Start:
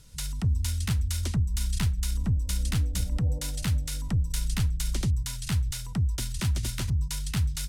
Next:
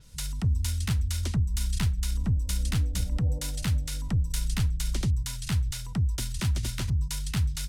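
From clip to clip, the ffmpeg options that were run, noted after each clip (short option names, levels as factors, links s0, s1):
-af "adynamicequalizer=threshold=0.00316:dfrequency=6600:dqfactor=0.7:tfrequency=6600:tqfactor=0.7:attack=5:release=100:ratio=0.375:range=2:mode=cutabove:tftype=highshelf"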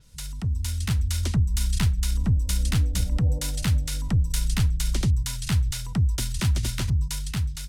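-af "dynaudnorm=f=230:g=7:m=2,volume=0.794"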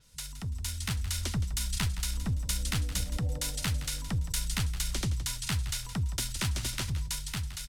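-filter_complex "[0:a]lowshelf=f=370:g=-8.5,asplit=4[s0][s1][s2][s3];[s1]adelay=168,afreqshift=-41,volume=0.224[s4];[s2]adelay=336,afreqshift=-82,volume=0.0668[s5];[s3]adelay=504,afreqshift=-123,volume=0.0202[s6];[s0][s4][s5][s6]amix=inputs=4:normalize=0,volume=0.841"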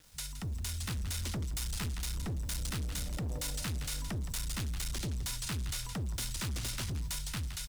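-af "volume=47.3,asoftclip=hard,volume=0.0211,acrusher=bits=9:mix=0:aa=0.000001"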